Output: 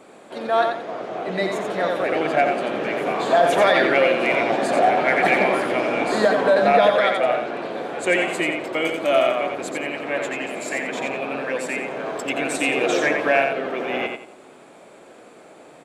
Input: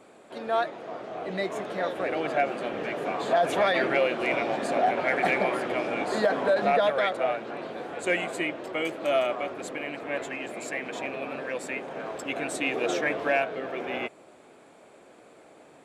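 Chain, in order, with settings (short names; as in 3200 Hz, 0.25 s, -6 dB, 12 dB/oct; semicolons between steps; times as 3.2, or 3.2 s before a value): bell 84 Hz -8 dB 0.61 oct; on a send: feedback echo 88 ms, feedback 26%, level -5 dB; on the sum: gain +6 dB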